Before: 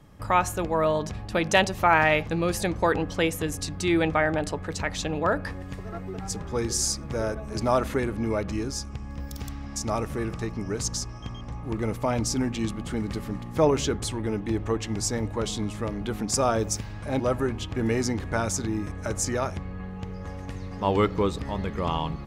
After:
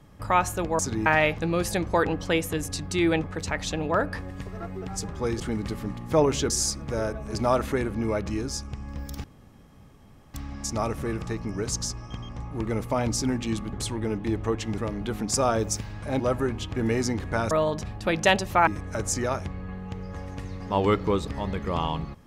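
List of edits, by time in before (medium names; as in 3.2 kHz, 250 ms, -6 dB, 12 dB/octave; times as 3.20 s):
0.79–1.95 s: swap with 18.51–18.78 s
4.13–4.56 s: delete
9.46 s: insert room tone 1.10 s
12.85–13.95 s: move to 6.72 s
15.00–15.78 s: delete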